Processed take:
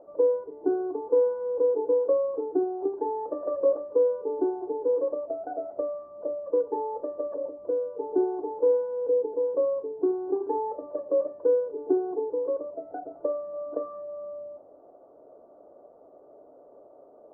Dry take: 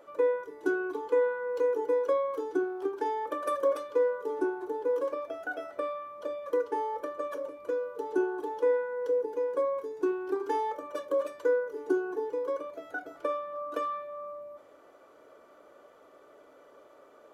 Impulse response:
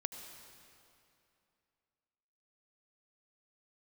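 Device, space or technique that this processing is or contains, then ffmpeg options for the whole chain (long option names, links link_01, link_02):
under water: -af "lowpass=frequency=780:width=0.5412,lowpass=frequency=780:width=1.3066,equalizer=frequency=710:width_type=o:width=0.27:gain=7,volume=3.5dB"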